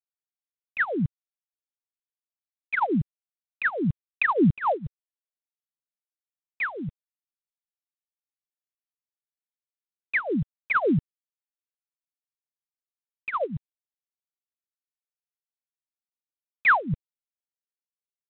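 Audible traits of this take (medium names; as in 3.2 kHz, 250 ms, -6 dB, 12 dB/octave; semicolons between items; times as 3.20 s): tremolo triangle 3.9 Hz, depth 45%; phasing stages 12, 1.4 Hz, lowest notch 260–1000 Hz; G.726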